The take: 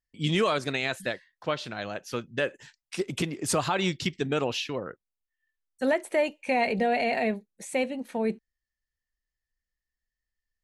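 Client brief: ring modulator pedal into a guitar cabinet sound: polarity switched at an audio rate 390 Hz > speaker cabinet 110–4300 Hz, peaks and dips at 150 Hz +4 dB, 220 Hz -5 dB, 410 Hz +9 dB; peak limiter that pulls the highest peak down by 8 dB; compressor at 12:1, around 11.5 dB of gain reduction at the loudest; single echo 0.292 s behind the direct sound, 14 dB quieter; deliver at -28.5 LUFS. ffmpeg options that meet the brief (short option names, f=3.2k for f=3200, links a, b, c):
-af "acompressor=threshold=-32dB:ratio=12,alimiter=level_in=3dB:limit=-24dB:level=0:latency=1,volume=-3dB,aecho=1:1:292:0.2,aeval=exprs='val(0)*sgn(sin(2*PI*390*n/s))':c=same,highpass=110,equalizer=f=150:t=q:w=4:g=4,equalizer=f=220:t=q:w=4:g=-5,equalizer=f=410:t=q:w=4:g=9,lowpass=f=4.3k:w=0.5412,lowpass=f=4.3k:w=1.3066,volume=10.5dB"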